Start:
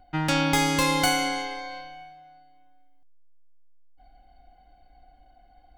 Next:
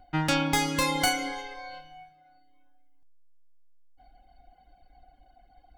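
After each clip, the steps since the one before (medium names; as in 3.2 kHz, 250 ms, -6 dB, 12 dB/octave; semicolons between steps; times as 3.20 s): reverb removal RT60 0.76 s; gain riding 0.5 s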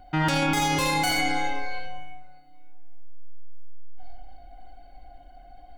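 algorithmic reverb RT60 0.78 s, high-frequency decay 0.35×, pre-delay 30 ms, DRR -0.5 dB; peak limiter -20 dBFS, peak gain reduction 10 dB; trim +5 dB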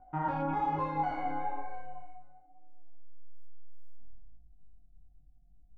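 chorus 1.1 Hz, delay 18.5 ms, depth 6.5 ms; low-pass sweep 1 kHz -> 140 Hz, 2.27–4.49 s; trim -8 dB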